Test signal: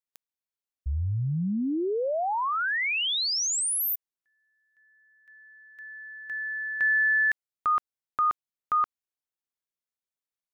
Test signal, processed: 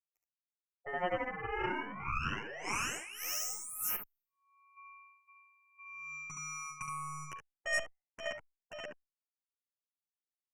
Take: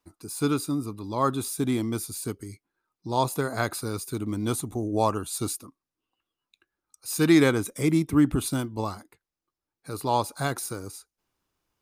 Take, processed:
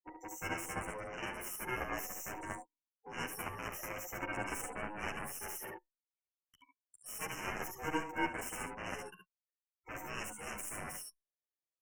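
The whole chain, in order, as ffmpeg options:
-filter_complex "[0:a]afftfilt=real='re*pow(10,23/40*sin(2*PI*(0.89*log(max(b,1)*sr/1024/100)/log(2)-(0.52)*(pts-256)/sr)))':imag='im*pow(10,23/40*sin(2*PI*(0.89*log(max(b,1)*sr/1024/100)/log(2)-(0.52)*(pts-256)/sr)))':win_size=1024:overlap=0.75,afftdn=nr=34:nf=-44,aeval=exprs='val(0)*sin(2*PI*630*n/s)':c=same,areverse,acompressor=threshold=0.02:ratio=5:attack=0.14:release=390:knee=1:detection=peak,areverse,aecho=1:1:42|55|70:0.15|0.15|0.562,aeval=exprs='0.0631*(cos(1*acos(clip(val(0)/0.0631,-1,1)))-cos(1*PI/2))+0.0112*(cos(2*acos(clip(val(0)/0.0631,-1,1)))-cos(2*PI/2))+0.00708*(cos(3*acos(clip(val(0)/0.0631,-1,1)))-cos(3*PI/2))+0.00141*(cos(6*acos(clip(val(0)/0.0631,-1,1)))-cos(6*PI/2))+0.0158*(cos(7*acos(clip(val(0)/0.0631,-1,1)))-cos(7*PI/2))':c=same,asuperstop=centerf=4000:order=20:qfactor=1.8,asplit=2[s0][s1];[s1]adelay=10.2,afreqshift=0.37[s2];[s0][s2]amix=inputs=2:normalize=1,volume=1.68"

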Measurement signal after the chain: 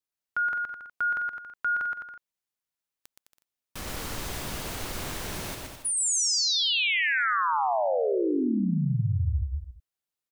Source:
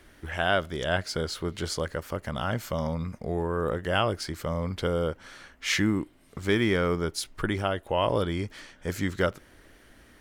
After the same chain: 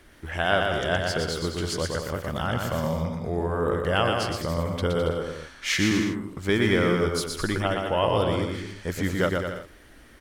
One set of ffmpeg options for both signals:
-af "aecho=1:1:120|210|277.5|328.1|366.1:0.631|0.398|0.251|0.158|0.1,volume=1.12"

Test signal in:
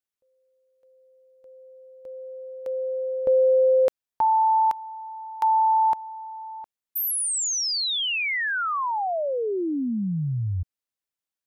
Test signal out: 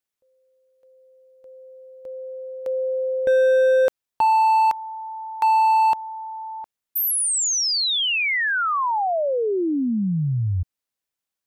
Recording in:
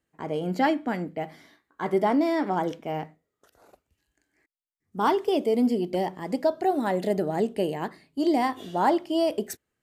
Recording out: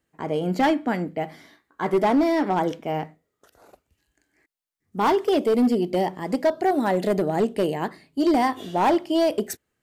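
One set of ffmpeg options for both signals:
-af "asoftclip=type=hard:threshold=0.119,volume=1.58"

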